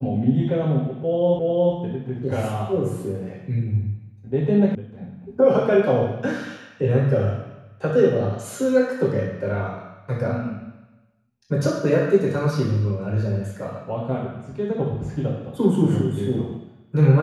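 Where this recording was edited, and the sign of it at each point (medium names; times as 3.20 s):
1.39 s: repeat of the last 0.36 s
4.75 s: sound stops dead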